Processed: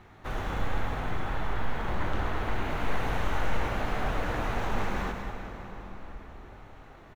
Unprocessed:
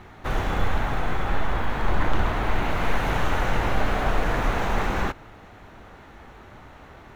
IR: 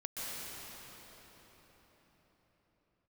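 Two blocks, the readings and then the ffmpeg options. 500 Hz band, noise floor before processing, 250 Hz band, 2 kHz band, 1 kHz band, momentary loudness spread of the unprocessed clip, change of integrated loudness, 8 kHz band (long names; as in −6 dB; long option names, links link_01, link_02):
−6.0 dB, −47 dBFS, −5.5 dB, −6.5 dB, −6.5 dB, 5 LU, −6.5 dB, can't be measured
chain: -filter_complex "[0:a]aecho=1:1:107.9|201.2:0.316|0.282,asplit=2[link_01][link_02];[1:a]atrim=start_sample=2205,adelay=20[link_03];[link_02][link_03]afir=irnorm=-1:irlink=0,volume=-9dB[link_04];[link_01][link_04]amix=inputs=2:normalize=0,volume=-8dB"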